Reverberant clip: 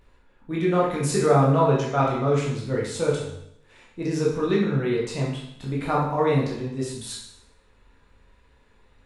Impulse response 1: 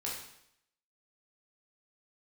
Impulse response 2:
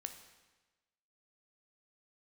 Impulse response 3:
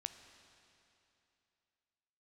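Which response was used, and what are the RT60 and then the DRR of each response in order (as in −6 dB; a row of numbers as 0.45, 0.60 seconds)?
1; 0.75, 1.2, 2.9 seconds; −5.0, 6.5, 8.5 decibels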